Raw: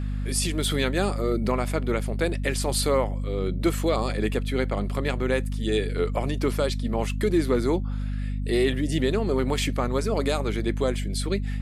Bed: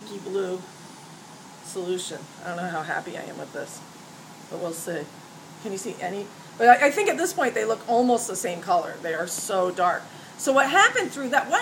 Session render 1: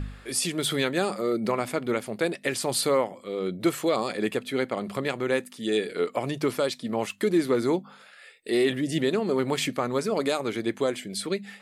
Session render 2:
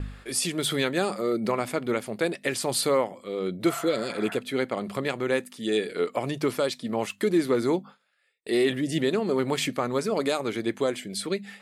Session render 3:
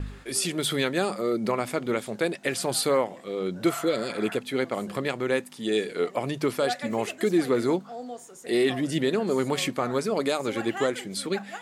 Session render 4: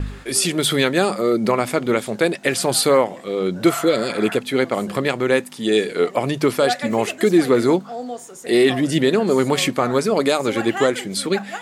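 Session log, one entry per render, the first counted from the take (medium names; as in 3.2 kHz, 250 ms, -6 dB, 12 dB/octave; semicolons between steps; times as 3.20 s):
de-hum 50 Hz, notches 5
gate with hold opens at -37 dBFS; 3.72–4.35 s: spectral replace 620–2100 Hz both
add bed -17.5 dB
trim +8 dB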